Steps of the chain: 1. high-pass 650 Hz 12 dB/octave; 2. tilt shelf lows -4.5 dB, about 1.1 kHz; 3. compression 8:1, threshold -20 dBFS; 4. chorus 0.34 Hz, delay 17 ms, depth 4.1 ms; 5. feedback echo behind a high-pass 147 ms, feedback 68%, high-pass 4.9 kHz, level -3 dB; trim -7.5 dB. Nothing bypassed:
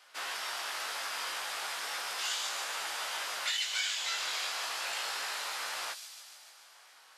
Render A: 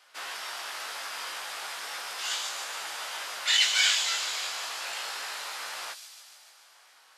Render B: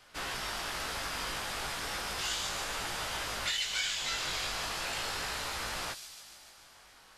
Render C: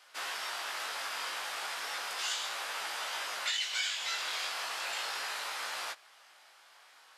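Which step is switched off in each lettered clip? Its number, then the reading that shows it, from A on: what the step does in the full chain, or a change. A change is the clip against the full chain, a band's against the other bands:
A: 3, crest factor change +5.5 dB; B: 1, 500 Hz band +4.5 dB; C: 5, echo-to-direct -17.0 dB to none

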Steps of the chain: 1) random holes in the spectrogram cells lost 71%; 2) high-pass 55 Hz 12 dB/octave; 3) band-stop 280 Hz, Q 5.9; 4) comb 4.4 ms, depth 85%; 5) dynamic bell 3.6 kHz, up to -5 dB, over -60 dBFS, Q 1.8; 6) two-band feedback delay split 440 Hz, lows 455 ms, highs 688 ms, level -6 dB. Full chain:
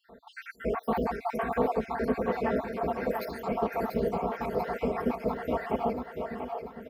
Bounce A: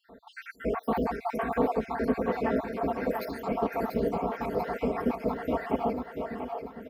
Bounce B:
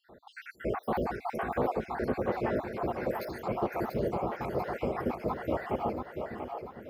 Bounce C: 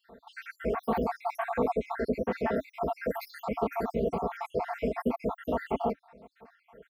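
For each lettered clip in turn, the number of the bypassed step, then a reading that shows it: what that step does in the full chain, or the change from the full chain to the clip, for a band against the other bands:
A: 3, 250 Hz band +2.0 dB; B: 4, 125 Hz band +3.5 dB; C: 6, echo-to-direct -4.5 dB to none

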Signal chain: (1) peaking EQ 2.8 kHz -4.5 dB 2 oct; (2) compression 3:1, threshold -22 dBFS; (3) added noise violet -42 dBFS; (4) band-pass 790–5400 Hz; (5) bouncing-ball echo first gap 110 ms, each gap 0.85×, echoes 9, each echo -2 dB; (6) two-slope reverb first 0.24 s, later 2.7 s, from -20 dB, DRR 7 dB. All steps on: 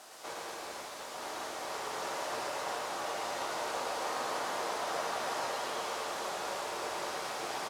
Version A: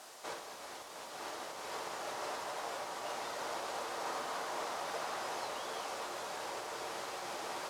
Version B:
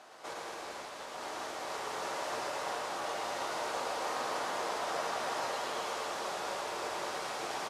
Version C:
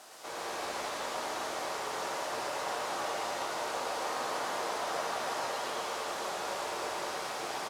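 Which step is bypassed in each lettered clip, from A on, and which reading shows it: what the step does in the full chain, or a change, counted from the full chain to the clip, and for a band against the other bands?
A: 5, echo-to-direct 3.5 dB to -7.0 dB; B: 3, 8 kHz band -1.5 dB; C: 2, mean gain reduction 2.0 dB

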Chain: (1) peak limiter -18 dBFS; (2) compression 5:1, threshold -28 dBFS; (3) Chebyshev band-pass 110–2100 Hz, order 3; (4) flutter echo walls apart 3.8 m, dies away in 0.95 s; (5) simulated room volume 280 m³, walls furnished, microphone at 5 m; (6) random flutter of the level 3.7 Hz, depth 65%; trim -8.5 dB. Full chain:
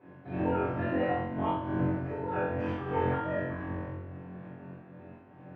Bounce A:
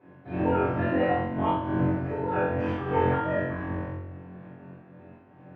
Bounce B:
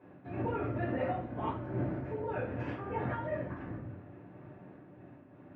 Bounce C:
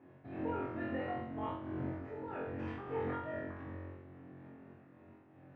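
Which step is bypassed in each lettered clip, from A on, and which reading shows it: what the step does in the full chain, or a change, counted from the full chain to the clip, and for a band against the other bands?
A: 2, mean gain reduction 3.0 dB; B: 4, 125 Hz band +2.0 dB; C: 5, momentary loudness spread change +2 LU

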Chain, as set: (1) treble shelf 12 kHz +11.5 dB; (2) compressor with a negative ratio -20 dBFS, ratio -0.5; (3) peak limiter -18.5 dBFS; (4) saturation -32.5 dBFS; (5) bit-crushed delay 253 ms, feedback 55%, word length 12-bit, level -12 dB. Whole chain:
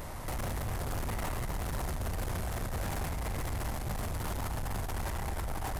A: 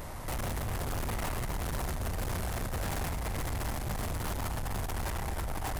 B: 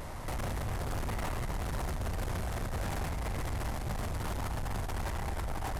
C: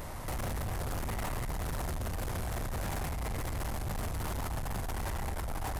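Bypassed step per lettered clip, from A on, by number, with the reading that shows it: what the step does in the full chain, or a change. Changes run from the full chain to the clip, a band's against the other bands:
3, mean gain reduction 4.5 dB; 1, 8 kHz band -3.0 dB; 5, crest factor change -3.5 dB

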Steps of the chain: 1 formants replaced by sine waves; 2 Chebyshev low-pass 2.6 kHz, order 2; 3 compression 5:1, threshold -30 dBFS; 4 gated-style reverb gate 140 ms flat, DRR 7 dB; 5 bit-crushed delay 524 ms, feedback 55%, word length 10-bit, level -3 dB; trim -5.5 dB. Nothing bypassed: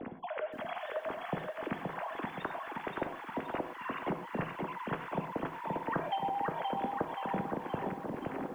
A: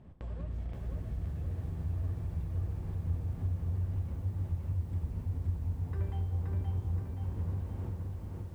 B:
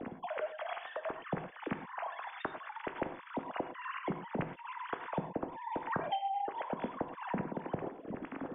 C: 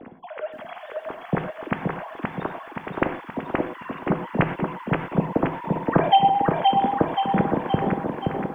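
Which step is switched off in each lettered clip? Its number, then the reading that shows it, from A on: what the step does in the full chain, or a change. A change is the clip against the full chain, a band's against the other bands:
1, 125 Hz band +28.0 dB; 5, loudness change -2.0 LU; 3, mean gain reduction 7.0 dB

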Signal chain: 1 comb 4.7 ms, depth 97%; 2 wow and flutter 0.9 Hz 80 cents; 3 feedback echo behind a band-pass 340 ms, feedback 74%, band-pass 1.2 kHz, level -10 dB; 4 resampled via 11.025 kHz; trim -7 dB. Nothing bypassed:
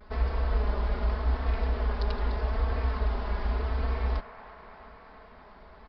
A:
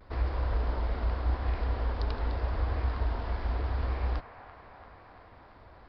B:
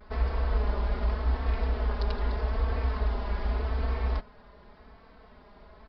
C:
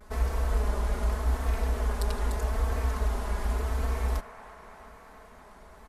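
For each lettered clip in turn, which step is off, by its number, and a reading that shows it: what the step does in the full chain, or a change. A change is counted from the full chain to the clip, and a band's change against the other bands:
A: 1, loudness change -2.0 LU; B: 3, momentary loudness spread change -16 LU; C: 4, crest factor change +2.5 dB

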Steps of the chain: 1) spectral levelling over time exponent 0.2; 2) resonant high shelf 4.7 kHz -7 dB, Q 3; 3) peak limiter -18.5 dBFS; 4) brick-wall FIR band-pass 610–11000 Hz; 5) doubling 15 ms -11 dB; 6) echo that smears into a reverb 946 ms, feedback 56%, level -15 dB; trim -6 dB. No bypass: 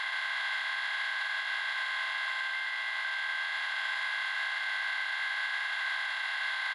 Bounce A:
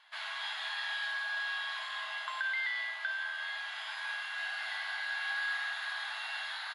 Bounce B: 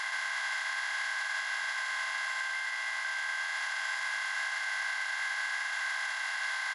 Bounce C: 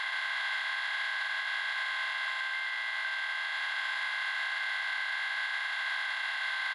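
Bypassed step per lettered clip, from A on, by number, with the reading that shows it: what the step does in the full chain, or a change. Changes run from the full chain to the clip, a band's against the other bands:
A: 1, crest factor change +2.5 dB; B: 2, 8 kHz band +11.5 dB; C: 6, echo-to-direct -13.5 dB to none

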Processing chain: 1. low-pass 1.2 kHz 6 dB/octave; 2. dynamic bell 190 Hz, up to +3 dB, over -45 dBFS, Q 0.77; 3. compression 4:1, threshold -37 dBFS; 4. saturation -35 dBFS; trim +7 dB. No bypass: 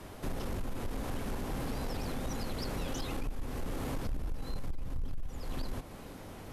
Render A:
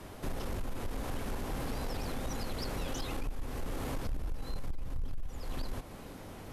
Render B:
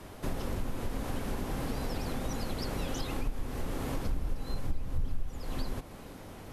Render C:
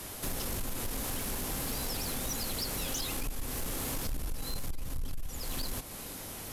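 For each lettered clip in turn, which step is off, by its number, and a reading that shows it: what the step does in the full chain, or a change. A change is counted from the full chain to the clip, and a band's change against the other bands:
2, 250 Hz band -2.0 dB; 4, distortion -14 dB; 1, 8 kHz band +14.0 dB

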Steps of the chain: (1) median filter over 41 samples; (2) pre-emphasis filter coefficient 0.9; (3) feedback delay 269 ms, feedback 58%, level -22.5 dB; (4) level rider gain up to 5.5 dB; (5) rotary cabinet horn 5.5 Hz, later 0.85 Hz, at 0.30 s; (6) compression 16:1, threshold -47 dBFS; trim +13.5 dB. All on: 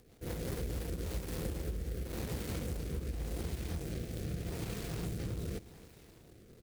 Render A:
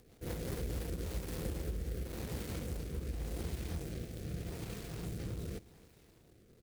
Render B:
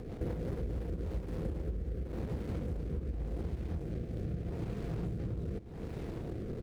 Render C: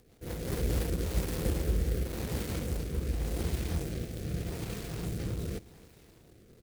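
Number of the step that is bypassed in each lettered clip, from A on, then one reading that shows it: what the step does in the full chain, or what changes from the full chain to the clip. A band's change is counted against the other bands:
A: 4, momentary loudness spread change -11 LU; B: 2, 4 kHz band -12.5 dB; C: 6, mean gain reduction 4.0 dB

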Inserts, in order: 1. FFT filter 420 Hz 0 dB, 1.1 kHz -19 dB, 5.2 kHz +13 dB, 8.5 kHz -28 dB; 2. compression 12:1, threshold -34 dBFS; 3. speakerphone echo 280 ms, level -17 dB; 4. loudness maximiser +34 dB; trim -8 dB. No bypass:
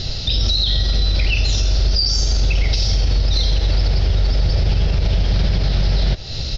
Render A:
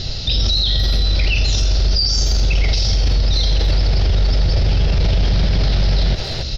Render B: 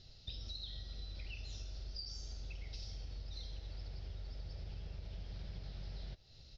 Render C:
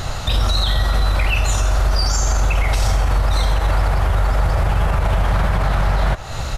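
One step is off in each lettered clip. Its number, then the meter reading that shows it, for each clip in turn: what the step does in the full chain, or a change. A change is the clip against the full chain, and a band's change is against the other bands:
2, mean gain reduction 11.0 dB; 4, crest factor change +6.5 dB; 1, 1 kHz band +14.0 dB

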